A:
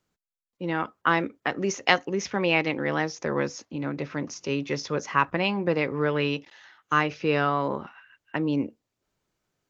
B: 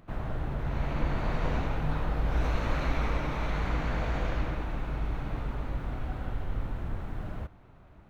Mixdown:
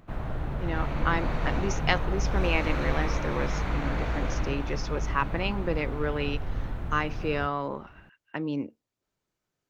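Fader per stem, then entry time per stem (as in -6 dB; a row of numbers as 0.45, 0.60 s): -5.0, +1.0 dB; 0.00, 0.00 s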